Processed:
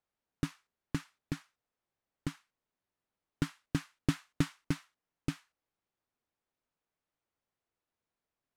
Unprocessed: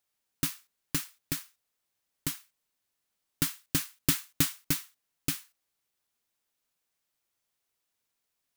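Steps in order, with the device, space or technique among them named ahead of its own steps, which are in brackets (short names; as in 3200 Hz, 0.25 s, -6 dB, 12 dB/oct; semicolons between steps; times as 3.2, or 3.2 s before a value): through cloth (LPF 8200 Hz 12 dB/oct; high shelf 2500 Hz -18 dB); gain +1 dB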